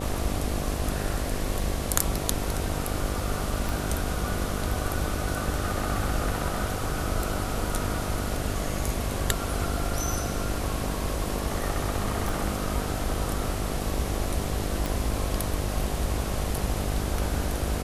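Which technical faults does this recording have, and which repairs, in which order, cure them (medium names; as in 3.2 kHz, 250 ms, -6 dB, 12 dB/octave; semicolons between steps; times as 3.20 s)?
buzz 50 Hz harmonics 15 -33 dBFS
3.69 s: pop
12.29 s: pop
14.86 s: pop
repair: de-click; de-hum 50 Hz, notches 15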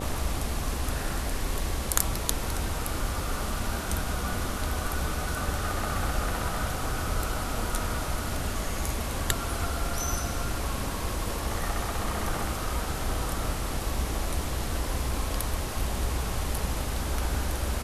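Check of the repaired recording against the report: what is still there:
3.69 s: pop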